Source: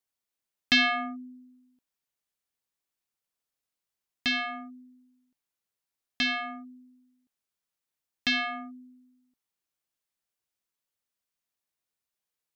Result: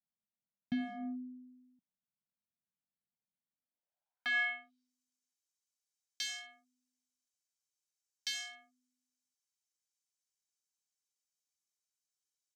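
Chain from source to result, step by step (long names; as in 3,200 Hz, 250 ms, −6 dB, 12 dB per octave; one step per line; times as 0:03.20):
comb filter 1.3 ms, depth 94%
in parallel at −6 dB: wave folding −28 dBFS
on the sum: band-pass filter sweep 200 Hz → 6,400 Hz, 0:03.51–0:04.94
level −2 dB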